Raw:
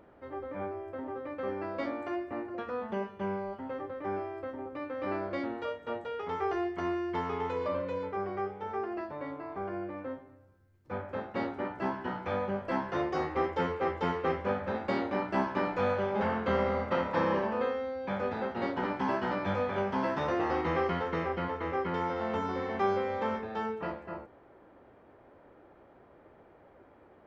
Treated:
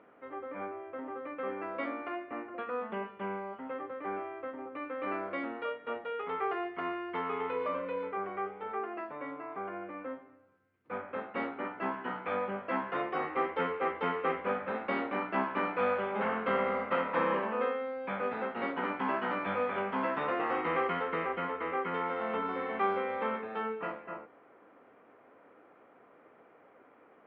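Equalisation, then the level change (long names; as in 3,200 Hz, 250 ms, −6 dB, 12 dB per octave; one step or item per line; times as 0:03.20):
loudspeaker in its box 340–2,700 Hz, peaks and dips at 360 Hz −9 dB, 590 Hz −8 dB, 870 Hz −8 dB, 1,700 Hz −5 dB
+5.0 dB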